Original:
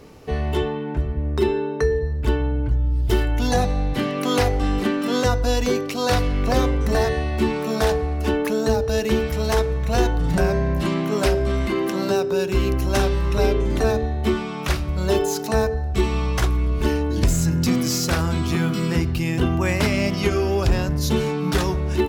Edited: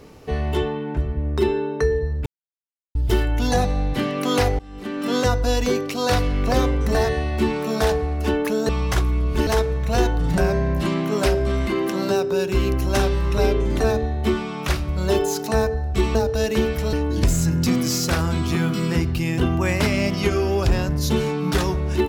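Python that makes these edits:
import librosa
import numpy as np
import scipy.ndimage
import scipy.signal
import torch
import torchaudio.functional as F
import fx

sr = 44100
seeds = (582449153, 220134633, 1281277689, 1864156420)

y = fx.edit(x, sr, fx.silence(start_s=2.26, length_s=0.69),
    fx.fade_in_from(start_s=4.59, length_s=0.5, curve='qua', floor_db=-22.0),
    fx.swap(start_s=8.69, length_s=0.78, other_s=16.15, other_length_s=0.78), tone=tone)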